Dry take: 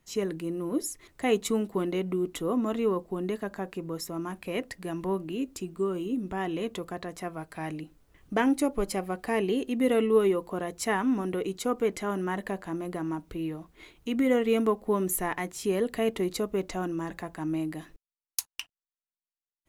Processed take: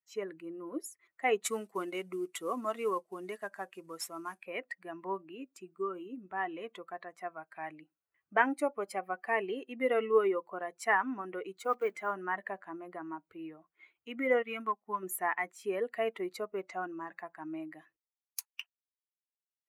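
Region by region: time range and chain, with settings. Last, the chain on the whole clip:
1.44–4.43 CVSD 64 kbps + high shelf 4600 Hz +12 dB
11.58–12.13 block floating point 5-bit + notches 60/120/180/240 Hz
14.42–15.03 bell 510 Hz -9.5 dB 0.97 oct + overloaded stage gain 21.5 dB + upward expander, over -38 dBFS
whole clip: per-bin expansion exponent 1.5; HPF 560 Hz 12 dB/oct; resonant high shelf 2700 Hz -9.5 dB, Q 1.5; gain +3 dB

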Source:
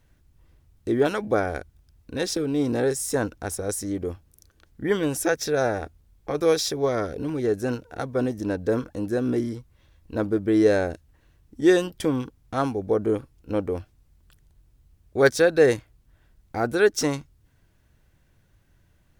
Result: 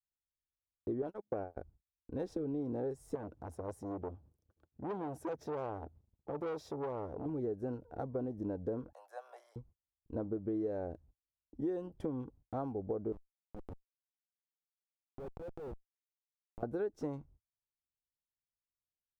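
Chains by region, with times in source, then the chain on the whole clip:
1.02–1.57 gate -26 dBFS, range -47 dB + core saturation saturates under 810 Hz
3.15–7.26 HPF 61 Hz 24 dB/oct + upward compressor, threshold -40 dBFS + core saturation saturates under 2200 Hz
8.93–9.56 steep high-pass 650 Hz 48 dB/oct + high shelf 3800 Hz +9.5 dB
13.12–16.63 Schmitt trigger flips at -20 dBFS + compressor 16:1, threshold -35 dBFS
whole clip: gate -49 dBFS, range -40 dB; EQ curve 840 Hz 0 dB, 1800 Hz -16 dB, 5600 Hz -24 dB; compressor 6:1, threshold -27 dBFS; gain -7 dB

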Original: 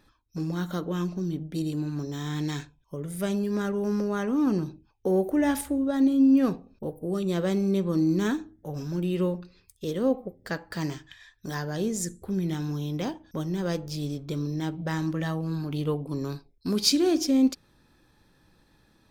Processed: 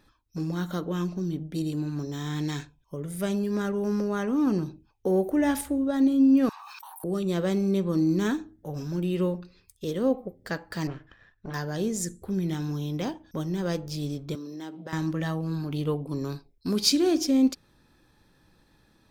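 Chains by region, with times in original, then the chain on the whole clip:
6.49–7.04 steep high-pass 890 Hz 72 dB/oct + fast leveller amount 100%
10.87–11.54 minimum comb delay 0.71 ms + LPF 1800 Hz
14.35–14.93 HPF 220 Hz 24 dB/oct + notch 2300 Hz, Q 14 + compressor 3:1, threshold -36 dBFS
whole clip: dry

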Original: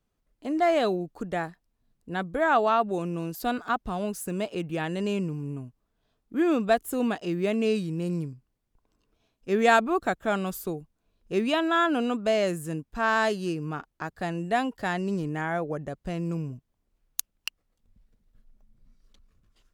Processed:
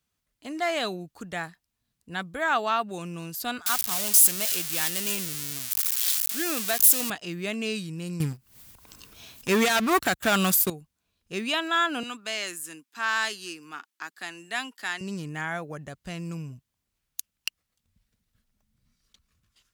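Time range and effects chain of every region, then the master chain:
3.66–7.1 switching spikes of -18.5 dBFS + HPF 270 Hz 6 dB/oct
8.2–10.7 sample leveller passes 3 + upward compressor, threshold -24 dBFS + high shelf 11000 Hz +10.5 dB
12.03–15.01 HPF 280 Hz 24 dB/oct + bell 560 Hz -11 dB 0.94 oct
whole clip: HPF 66 Hz; passive tone stack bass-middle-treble 5-5-5; maximiser +21.5 dB; gain -9 dB

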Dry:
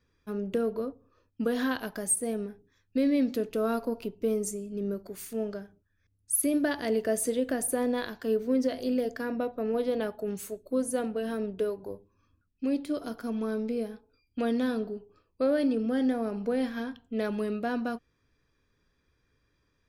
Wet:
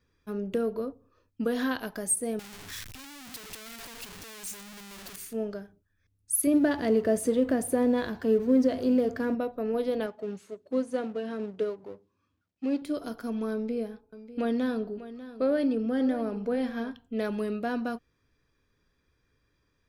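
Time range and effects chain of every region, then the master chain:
2.39–5.16 infinite clipping + passive tone stack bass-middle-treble 5-5-5
6.47–9.35 G.711 law mismatch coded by mu + HPF 55 Hz + tilt -2 dB/oct
10.06–12.82 G.711 law mismatch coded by mu + BPF 110–5500 Hz + upward expander, over -49 dBFS
13.53–16.91 high shelf 4200 Hz -5.5 dB + echo 0.594 s -14.5 dB
whole clip: dry

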